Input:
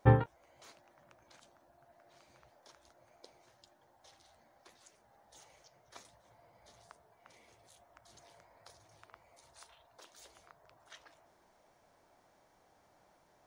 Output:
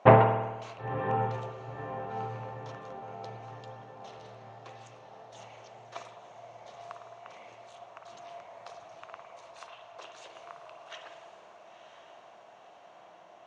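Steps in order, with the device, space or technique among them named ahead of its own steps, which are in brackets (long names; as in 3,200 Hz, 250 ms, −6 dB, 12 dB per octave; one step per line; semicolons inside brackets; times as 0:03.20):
low-shelf EQ 470 Hz +5.5 dB
feedback delay with all-pass diffusion 989 ms, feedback 53%, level −9.5 dB
full-range speaker at full volume (highs frequency-modulated by the lows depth 0.41 ms; loudspeaker in its box 220–6,400 Hz, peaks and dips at 280 Hz −7 dB, 680 Hz +9 dB, 1,100 Hz +7 dB, 2,700 Hz +9 dB, 4,900 Hz −6 dB)
spring reverb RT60 1.1 s, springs 52 ms, chirp 70 ms, DRR 5.5 dB
level +6 dB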